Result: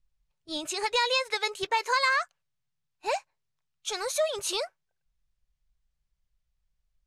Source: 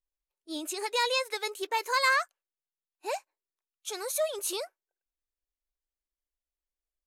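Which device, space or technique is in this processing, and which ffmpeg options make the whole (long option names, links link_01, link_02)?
jukebox: -af "lowpass=6500,lowshelf=frequency=210:width_type=q:width=3:gain=13,acompressor=threshold=-28dB:ratio=6,volume=6.5dB"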